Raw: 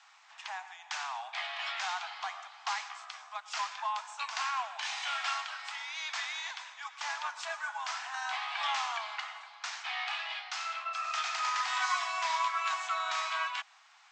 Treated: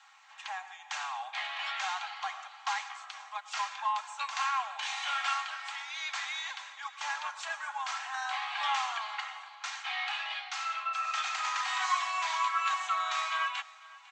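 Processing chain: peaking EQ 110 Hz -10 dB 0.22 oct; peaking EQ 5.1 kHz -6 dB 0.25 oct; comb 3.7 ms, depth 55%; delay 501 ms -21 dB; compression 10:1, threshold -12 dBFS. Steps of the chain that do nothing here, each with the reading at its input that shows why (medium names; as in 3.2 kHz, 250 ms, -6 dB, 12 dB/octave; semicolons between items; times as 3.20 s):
peaking EQ 110 Hz: input has nothing below 570 Hz; compression, threshold -12 dBFS: peak at its input -17.5 dBFS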